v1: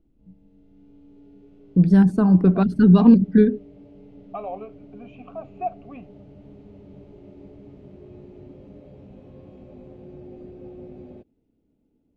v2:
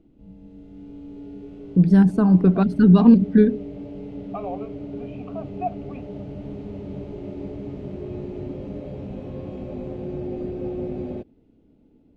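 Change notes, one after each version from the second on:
background +11.5 dB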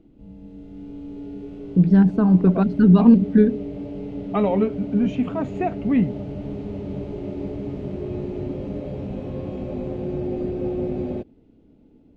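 first voice: add distance through air 150 m; second voice: remove vowel filter a; background +3.5 dB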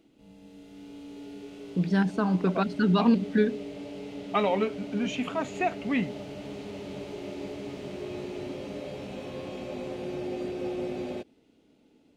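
master: add tilt EQ +4.5 dB/octave

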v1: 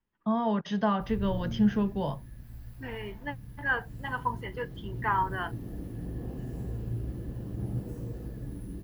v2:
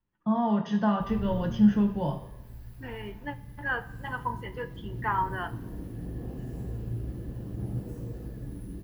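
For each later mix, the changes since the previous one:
reverb: on, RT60 1.1 s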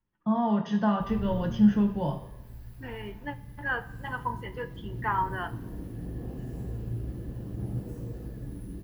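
no change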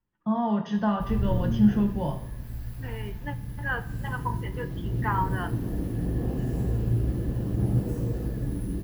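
background +9.0 dB

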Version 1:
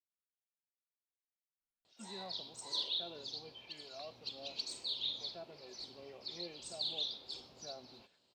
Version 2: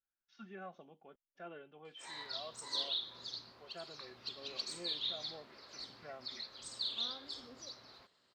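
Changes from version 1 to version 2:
first voice: entry -1.60 s; second voice: unmuted; master: add high-order bell 1.5 kHz +9.5 dB 1.1 oct

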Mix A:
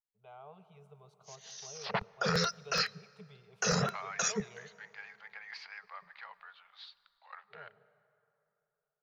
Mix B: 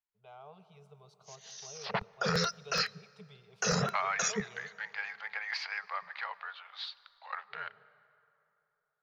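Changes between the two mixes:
first voice: add peaking EQ 4.9 kHz +10.5 dB 0.87 oct; second voice +10.0 dB

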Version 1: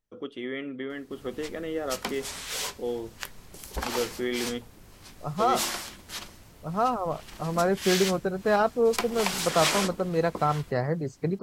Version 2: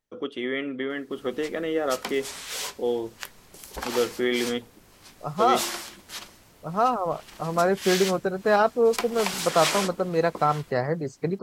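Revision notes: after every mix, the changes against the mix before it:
first voice +6.5 dB; second voice +3.5 dB; master: add bass shelf 160 Hz -9 dB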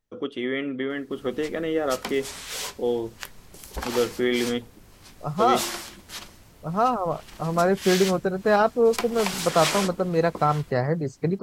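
master: add bass shelf 160 Hz +9 dB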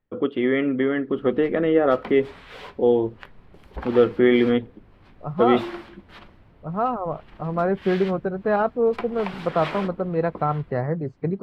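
first voice +8.0 dB; master: add distance through air 470 m

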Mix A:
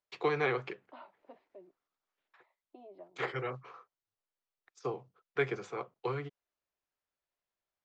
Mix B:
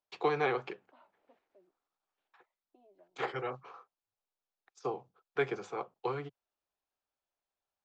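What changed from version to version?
first voice: add graphic EQ with 31 bands 125 Hz -6 dB, 800 Hz +6 dB, 2 kHz -5 dB; second voice -11.5 dB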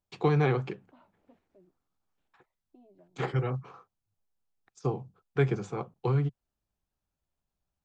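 master: remove three-band isolator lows -21 dB, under 370 Hz, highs -14 dB, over 6.4 kHz

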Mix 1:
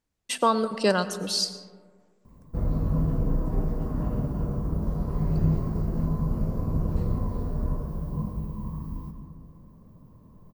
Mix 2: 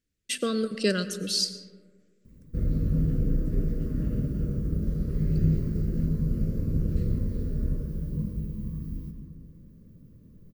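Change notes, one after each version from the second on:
master: add Butterworth band-stop 870 Hz, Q 0.79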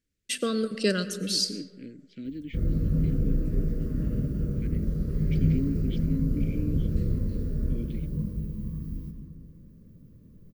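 second voice: unmuted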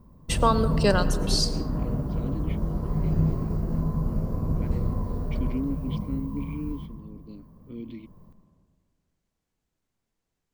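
background: entry -2.25 s; master: remove Butterworth band-stop 870 Hz, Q 0.79

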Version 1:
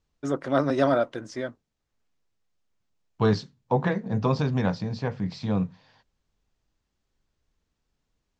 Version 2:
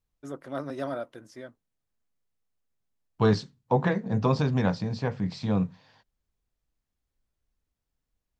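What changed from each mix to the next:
first voice -11.0 dB; master: remove low-pass 7.5 kHz 24 dB/octave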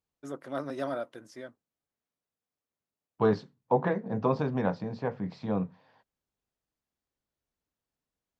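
first voice: add high-pass 160 Hz 6 dB/octave; second voice: add band-pass filter 590 Hz, Q 0.54

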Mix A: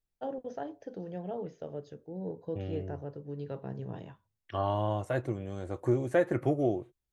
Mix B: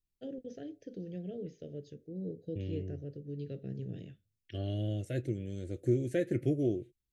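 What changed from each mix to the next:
master: add Butterworth band-stop 980 Hz, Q 0.53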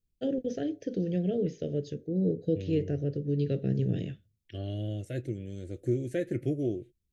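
first voice +12.0 dB

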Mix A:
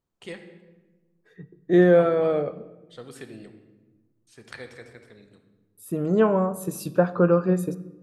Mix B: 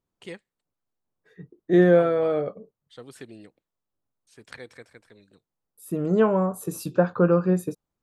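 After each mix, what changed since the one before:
reverb: off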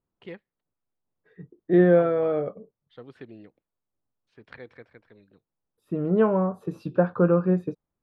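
master: add distance through air 340 m

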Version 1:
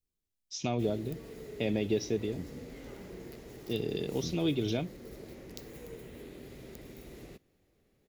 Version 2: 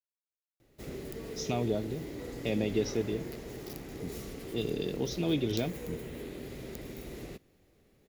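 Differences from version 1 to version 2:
first voice: entry +0.85 s; second voice: entry +1.65 s; background +5.5 dB

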